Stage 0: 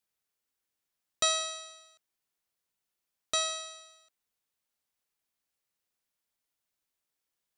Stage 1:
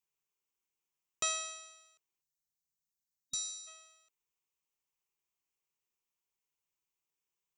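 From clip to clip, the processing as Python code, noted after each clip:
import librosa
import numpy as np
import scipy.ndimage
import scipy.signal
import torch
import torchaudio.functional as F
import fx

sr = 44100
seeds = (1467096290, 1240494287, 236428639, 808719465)

y = fx.ripple_eq(x, sr, per_octave=0.73, db=9)
y = fx.spec_box(y, sr, start_s=2.21, length_s=1.46, low_hz=270.0, high_hz=3800.0, gain_db=-20)
y = y * librosa.db_to_amplitude(-6.5)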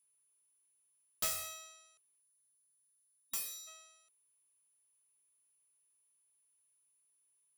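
y = fx.self_delay(x, sr, depth_ms=0.3)
y = y + 10.0 ** (-73.0 / 20.0) * np.sin(2.0 * np.pi * 10000.0 * np.arange(len(y)) / sr)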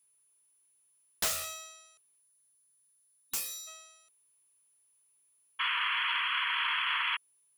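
y = fx.spec_paint(x, sr, seeds[0], shape='noise', start_s=5.59, length_s=1.58, low_hz=920.0, high_hz=3400.0, level_db=-37.0)
y = fx.doppler_dist(y, sr, depth_ms=0.5)
y = y * librosa.db_to_amplitude(6.0)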